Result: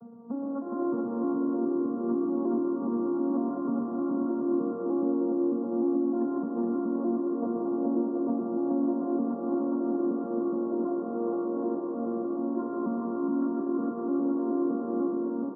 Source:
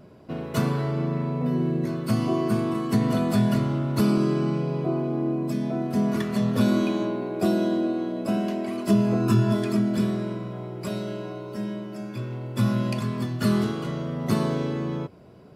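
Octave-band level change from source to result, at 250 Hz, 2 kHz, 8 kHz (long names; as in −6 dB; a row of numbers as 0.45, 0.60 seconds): −2.5 dB, below −20 dB, below −35 dB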